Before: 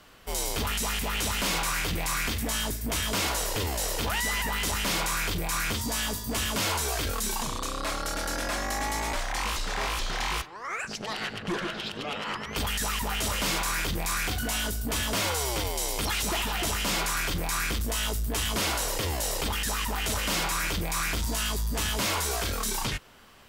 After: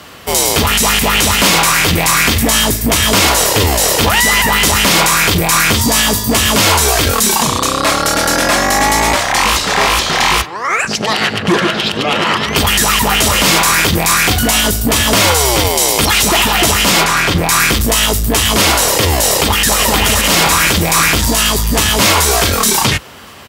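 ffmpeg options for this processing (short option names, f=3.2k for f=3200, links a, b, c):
-filter_complex "[0:a]asplit=2[a][b];[b]afade=t=in:st=11.55:d=0.01,afade=t=out:st=12.04:d=0.01,aecho=0:1:570|1140|1710|2280|2850:0.446684|0.201008|0.0904534|0.040704|0.0183168[c];[a][c]amix=inputs=2:normalize=0,asettb=1/sr,asplit=3[d][e][f];[d]atrim=end=17.044[g];[e]atrim=start=17.04:end=17.49,asetpts=PTS-STARTPTS,afade=t=in:d=0.004:c=qsin,afade=t=out:st=0.446:d=0.004:c=qsin,highshelf=f=6.3k:g=-11.5[h];[f]atrim=start=17.486[i];[g][h]acrossfade=d=0.004:c1=hsin:c2=qsin[j];[j][i]acrossfade=d=0.004:c1=qsin:c2=hsin,asplit=2[k][l];[l]afade=t=in:st=19.19:d=0.01,afade=t=out:st=19.69:d=0.01,aecho=0:1:520|1040|1560|2080|2600|3120|3640:0.891251|0.445625|0.222813|0.111406|0.0557032|0.0278516|0.0139258[m];[k][m]amix=inputs=2:normalize=0,highpass=f=63:w=0.5412,highpass=f=63:w=1.3066,bandreject=f=1.5k:w=23,alimiter=level_in=20dB:limit=-1dB:release=50:level=0:latency=1,volume=-1dB"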